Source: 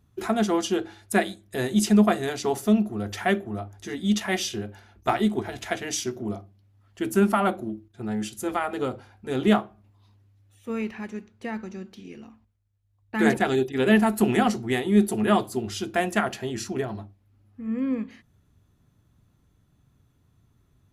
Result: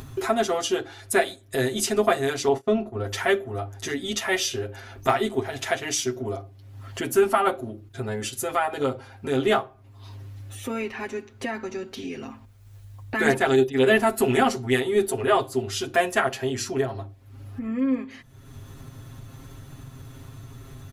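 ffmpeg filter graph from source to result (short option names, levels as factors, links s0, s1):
-filter_complex "[0:a]asettb=1/sr,asplit=3[s0][s1][s2];[s0]atrim=end=2.484[s3];[s1]atrim=start=2.48:end=3.04,asetpts=PTS-STARTPTS,afade=t=in:d=0.004:c=qsin,afade=t=out:st=0.556:d=0.004:c=qsin,aemphasis=mode=reproduction:type=75fm,agate=range=0.0794:threshold=0.0224:ratio=16:release=100:detection=peak,asplit=2[s4][s5];[s5]adelay=28,volume=0.224[s6];[s4][s6]amix=inputs=2:normalize=0,atrim=end_sample=24696[s7];[s2]atrim=start=3.036[s8];[s3][s7]acrossfade=d=0.004:c1=hsin:c2=qsin[s9];[s9][s8]acrossfade=d=0.004:c1=qsin:c2=hsin,asettb=1/sr,asplit=3[s10][s11][s12];[s10]atrim=end=15.104[s13];[s11]atrim=start=15.1:end=15.59,asetpts=PTS-STARTPTS,afade=t=in:d=0.004:c=qsin,afade=t=out:st=0.486:d=0.004:c=qsin,highshelf=f=6200:g=-6,bandreject=f=210:w=6.7[s14];[s12]atrim=start=15.586[s15];[s13][s14]acrossfade=d=0.004:c1=hsin:c2=qsin[s16];[s16][s15]acrossfade=d=0.004:c1=qsin:c2=hsin,equalizer=f=180:t=o:w=0.84:g=-7,aecho=1:1:7.5:0.97,acompressor=mode=upward:threshold=0.0631:ratio=2.5"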